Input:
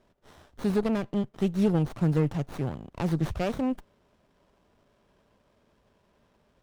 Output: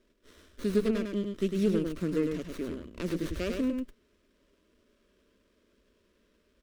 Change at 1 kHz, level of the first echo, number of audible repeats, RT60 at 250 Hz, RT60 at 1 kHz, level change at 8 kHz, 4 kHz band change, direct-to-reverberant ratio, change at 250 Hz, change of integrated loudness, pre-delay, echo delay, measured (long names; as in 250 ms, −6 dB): −11.0 dB, −5.0 dB, 1, no reverb audible, no reverb audible, +1.0 dB, +0.5 dB, no reverb audible, −2.5 dB, −3.0 dB, no reverb audible, 103 ms